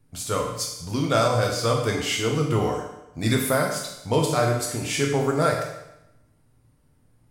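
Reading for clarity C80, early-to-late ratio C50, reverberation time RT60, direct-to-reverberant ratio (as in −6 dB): 6.5 dB, 4.0 dB, 0.85 s, −0.5 dB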